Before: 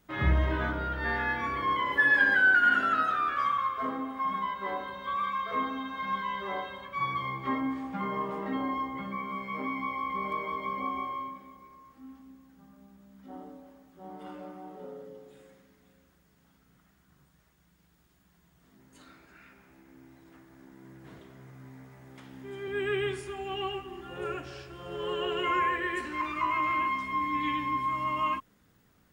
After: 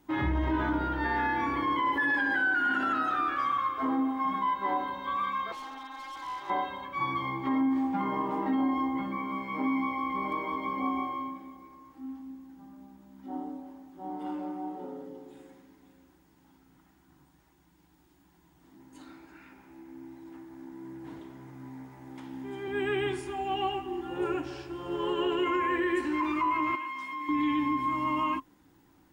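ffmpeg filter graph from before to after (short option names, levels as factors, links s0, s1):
-filter_complex "[0:a]asettb=1/sr,asplit=3[s0][s1][s2];[s0]atrim=end=5.524[s3];[s1]atrim=start=5.52:end=6.5,asetpts=PTS-STARTPTS,afade=t=in:d=0.004:c=qsin,afade=t=out:st=0.976:d=0.004:c=qsin,highpass=710,tremolo=f=250:d=0.788,asoftclip=type=hard:threshold=0.0106[s4];[s2]atrim=start=6.496[s5];[s3][s4]acrossfade=d=0.004:c1=hsin:c2=qsin[s6];[s6][s5]acrossfade=d=0.004:c1=qsin:c2=hsin,asettb=1/sr,asplit=3[s7][s8][s9];[s7]atrim=end=26.754[s10];[s8]atrim=start=26.75:end=27.29,asetpts=PTS-STARTPTS,afade=t=in:d=0.004:c=qsin,afade=t=out:st=0.536:d=0.004:c=qsin,highpass=f=1300:p=1,acompressor=threshold=0.02:ratio=4:attack=3.2:release=140:knee=1:detection=peak[s11];[s9]atrim=start=27.286[s12];[s10][s11]acrossfade=d=0.004:c1=hsin:c2=qsin[s13];[s13][s12]acrossfade=d=0.004:c1=qsin:c2=hsin,superequalizer=6b=3.55:9b=2.51,alimiter=limit=0.0944:level=0:latency=1:release=43"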